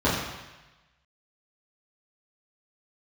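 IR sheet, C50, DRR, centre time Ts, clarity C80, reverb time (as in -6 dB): 2.0 dB, -10.5 dB, 65 ms, 4.0 dB, 1.1 s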